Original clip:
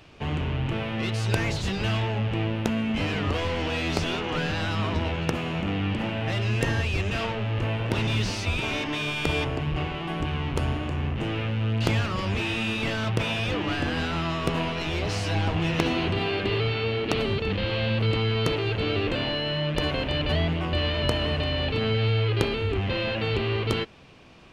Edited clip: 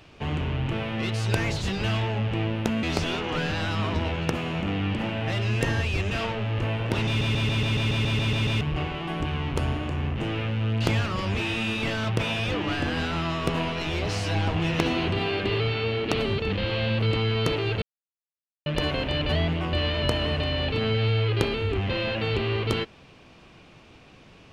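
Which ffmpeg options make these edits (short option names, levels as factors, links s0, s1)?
-filter_complex "[0:a]asplit=15[s0][s1][s2][s3][s4][s5][s6][s7][s8][s9][s10][s11][s12][s13][s14];[s0]atrim=end=2.832[s15];[s1]atrim=start=3.828:end=8.212[s16];[s2]atrim=start=8.068:end=8.212[s17];[s3]atrim=start=8.068:end=8.212[s18];[s4]atrim=start=8.068:end=8.212[s19];[s5]atrim=start=8.068:end=8.212[s20];[s6]atrim=start=8.068:end=8.212[s21];[s7]atrim=start=8.068:end=8.212[s22];[s8]atrim=start=8.068:end=8.212[s23];[s9]atrim=start=8.068:end=8.212[s24];[s10]atrim=start=8.068:end=8.212[s25];[s11]atrim=start=8.068:end=8.212[s26];[s12]atrim=start=9.608:end=18.82,asetpts=PTS-STARTPTS,afade=t=out:st=9.208:d=0.004:c=hsin[s27];[s13]atrim=start=18.82:end=19.66,asetpts=PTS-STARTPTS,volume=0[s28];[s14]atrim=start=19.66,asetpts=PTS-STARTPTS,afade=t=in:d=0.004:c=hsin[s29];[s15][s16]acrossfade=d=0.004:c1=hsin:c2=hsin[s30];[s30][s17]acrossfade=d=0.004:c1=hsin:c2=hsin[s31];[s31][s18]acrossfade=d=0.004:c1=hsin:c2=hsin[s32];[s32][s19]acrossfade=d=0.004:c1=hsin:c2=hsin[s33];[s33][s20]acrossfade=d=0.004:c1=hsin:c2=hsin[s34];[s34][s21]acrossfade=d=0.004:c1=hsin:c2=hsin[s35];[s35][s22]acrossfade=d=0.004:c1=hsin:c2=hsin[s36];[s36][s23]acrossfade=d=0.004:c1=hsin:c2=hsin[s37];[s37][s24]acrossfade=d=0.004:c1=hsin:c2=hsin[s38];[s38][s25]acrossfade=d=0.004:c1=hsin:c2=hsin[s39];[s39][s26]acrossfade=d=0.004:c1=hsin:c2=hsin[s40];[s27][s28][s29]concat=n=3:v=0:a=1[s41];[s40][s41]acrossfade=d=0.004:c1=hsin:c2=hsin"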